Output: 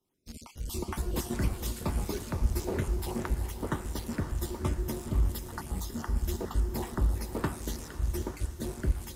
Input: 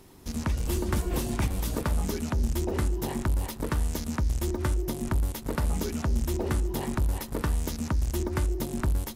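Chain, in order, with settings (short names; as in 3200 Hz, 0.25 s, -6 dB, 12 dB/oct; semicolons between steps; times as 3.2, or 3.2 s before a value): random spectral dropouts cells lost 34%; diffused feedback echo 0.517 s, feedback 58%, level -6 dB; three-band expander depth 100%; gain -3 dB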